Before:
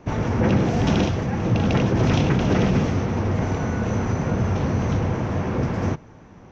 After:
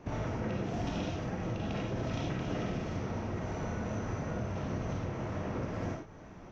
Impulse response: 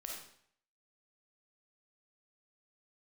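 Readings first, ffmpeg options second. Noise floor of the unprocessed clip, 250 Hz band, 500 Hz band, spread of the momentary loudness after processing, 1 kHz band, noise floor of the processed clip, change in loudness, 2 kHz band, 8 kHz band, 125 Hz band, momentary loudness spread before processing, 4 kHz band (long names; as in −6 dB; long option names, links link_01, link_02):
−46 dBFS, −14.5 dB, −12.5 dB, 2 LU, −12.5 dB, −50 dBFS, −14.5 dB, −13.0 dB, can't be measured, −15.0 dB, 5 LU, −13.5 dB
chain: -filter_complex "[0:a]acompressor=threshold=-30dB:ratio=4[link_01];[1:a]atrim=start_sample=2205,afade=type=out:start_time=0.16:duration=0.01,atrim=end_sample=7497[link_02];[link_01][link_02]afir=irnorm=-1:irlink=0"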